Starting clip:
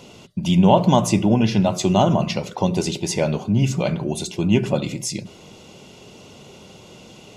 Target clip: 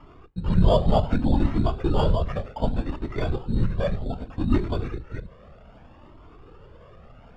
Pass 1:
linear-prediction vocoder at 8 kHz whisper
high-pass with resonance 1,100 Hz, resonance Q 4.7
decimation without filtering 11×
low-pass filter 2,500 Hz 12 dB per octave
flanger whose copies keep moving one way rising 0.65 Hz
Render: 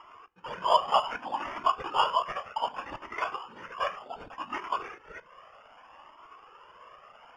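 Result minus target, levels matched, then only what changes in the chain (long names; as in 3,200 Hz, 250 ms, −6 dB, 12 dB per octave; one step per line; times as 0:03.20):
1,000 Hz band +10.5 dB
remove: high-pass with resonance 1,100 Hz, resonance Q 4.7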